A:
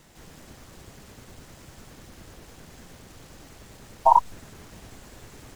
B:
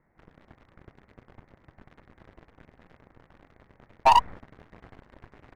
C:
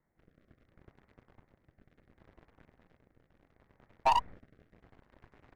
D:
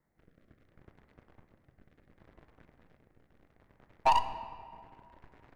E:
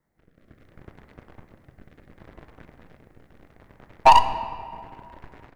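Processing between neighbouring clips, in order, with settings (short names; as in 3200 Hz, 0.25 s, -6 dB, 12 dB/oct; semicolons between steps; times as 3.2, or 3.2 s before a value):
elliptic low-pass 2100 Hz, stop band 40 dB; sample leveller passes 3; gain -6.5 dB
rotary speaker horn 0.7 Hz; gain -7.5 dB
reverb RT60 2.2 s, pre-delay 7 ms, DRR 10 dB; gain +1 dB
AGC gain up to 10.5 dB; gain +2 dB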